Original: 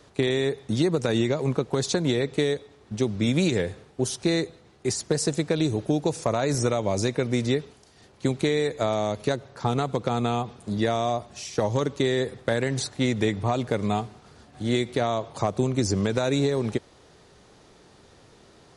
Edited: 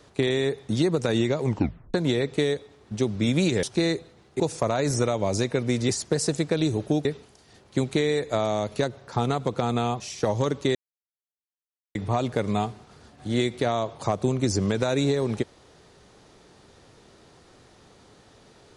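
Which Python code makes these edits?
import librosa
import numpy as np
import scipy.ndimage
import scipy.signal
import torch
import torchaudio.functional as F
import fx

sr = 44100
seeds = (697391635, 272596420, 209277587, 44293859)

y = fx.edit(x, sr, fx.tape_stop(start_s=1.45, length_s=0.49),
    fx.cut(start_s=3.63, length_s=0.48),
    fx.move(start_s=4.88, length_s=1.16, to_s=7.53),
    fx.cut(start_s=10.48, length_s=0.87),
    fx.silence(start_s=12.1, length_s=1.2), tone=tone)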